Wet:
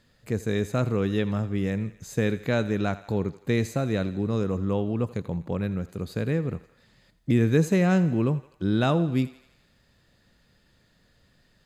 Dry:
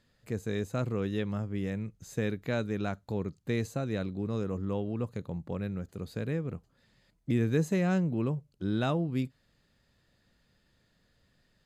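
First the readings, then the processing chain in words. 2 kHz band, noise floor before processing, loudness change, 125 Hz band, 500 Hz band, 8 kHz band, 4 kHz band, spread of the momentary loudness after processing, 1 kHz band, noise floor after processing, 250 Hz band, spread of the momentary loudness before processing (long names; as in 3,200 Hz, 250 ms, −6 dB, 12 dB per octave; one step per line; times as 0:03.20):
+6.5 dB, −71 dBFS, +6.5 dB, +6.5 dB, +6.5 dB, +6.5 dB, +6.5 dB, 10 LU, +6.5 dB, −64 dBFS, +6.5 dB, 10 LU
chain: feedback echo with a high-pass in the loop 83 ms, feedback 61%, high-pass 510 Hz, level −15.5 dB
level +6.5 dB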